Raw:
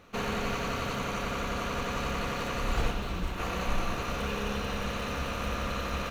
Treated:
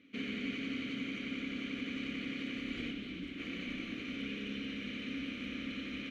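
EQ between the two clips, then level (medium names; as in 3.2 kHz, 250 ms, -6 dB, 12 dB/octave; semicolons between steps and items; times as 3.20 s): vowel filter i; +6.5 dB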